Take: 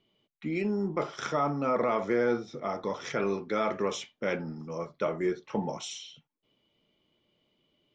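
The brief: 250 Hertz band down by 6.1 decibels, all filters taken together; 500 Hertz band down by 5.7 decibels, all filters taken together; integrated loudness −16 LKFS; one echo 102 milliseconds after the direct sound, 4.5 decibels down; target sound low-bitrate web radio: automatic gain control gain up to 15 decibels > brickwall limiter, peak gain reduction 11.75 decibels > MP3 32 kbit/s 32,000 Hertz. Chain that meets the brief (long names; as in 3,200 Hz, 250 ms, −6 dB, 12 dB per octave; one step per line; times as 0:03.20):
parametric band 250 Hz −7 dB
parametric band 500 Hz −5 dB
single-tap delay 102 ms −4.5 dB
automatic gain control gain up to 15 dB
brickwall limiter −29 dBFS
level +23 dB
MP3 32 kbit/s 32,000 Hz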